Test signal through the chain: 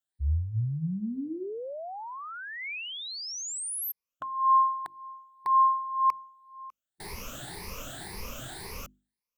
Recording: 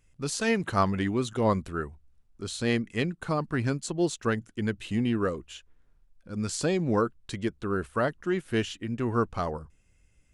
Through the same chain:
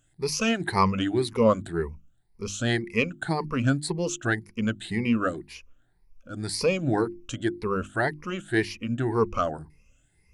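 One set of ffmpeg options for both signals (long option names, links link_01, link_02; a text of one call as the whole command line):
ffmpeg -i in.wav -af "afftfilt=real='re*pow(10,17/40*sin(2*PI*(0.85*log(max(b,1)*sr/1024/100)/log(2)-(1.9)*(pts-256)/sr)))':imag='im*pow(10,17/40*sin(2*PI*(0.85*log(max(b,1)*sr/1024/100)/log(2)-(1.9)*(pts-256)/sr)))':win_size=1024:overlap=0.75,adynamicequalizer=threshold=0.00501:dfrequency=2300:dqfactor=3:tfrequency=2300:tqfactor=3:attack=5:release=100:ratio=0.375:range=2:mode=boostabove:tftype=bell,bandreject=frequency=50:width_type=h:width=6,bandreject=frequency=100:width_type=h:width=6,bandreject=frequency=150:width_type=h:width=6,bandreject=frequency=200:width_type=h:width=6,bandreject=frequency=250:width_type=h:width=6,bandreject=frequency=300:width_type=h:width=6,bandreject=frequency=350:width_type=h:width=6" out.wav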